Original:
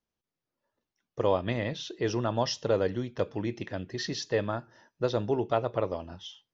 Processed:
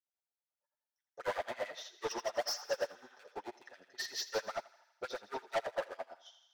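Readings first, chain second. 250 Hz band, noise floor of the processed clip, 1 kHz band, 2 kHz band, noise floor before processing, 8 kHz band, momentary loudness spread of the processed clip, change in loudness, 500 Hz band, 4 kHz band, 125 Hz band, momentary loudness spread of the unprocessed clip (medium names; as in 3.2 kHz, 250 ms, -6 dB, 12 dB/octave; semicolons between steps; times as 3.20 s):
-21.0 dB, under -85 dBFS, -7.0 dB, -3.5 dB, under -85 dBFS, no reading, 14 LU, -9.0 dB, -10.0 dB, -5.0 dB, -30.5 dB, 10 LU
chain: hard clipper -27 dBFS, distortion -7 dB; comb of notches 160 Hz; spectral replace 2.27–3.13 s, 750–4100 Hz both; band-stop 1.1 kHz, Q 5.9; LFO high-pass sine 9.1 Hz 650–2600 Hz; peaking EQ 2.6 kHz -12.5 dB 1.3 oct; saturation -37.5 dBFS, distortion -6 dB; on a send: thinning echo 82 ms, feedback 68%, high-pass 600 Hz, level -7 dB; on the sum: upward expansion 2.5:1, over -51 dBFS; trim +10 dB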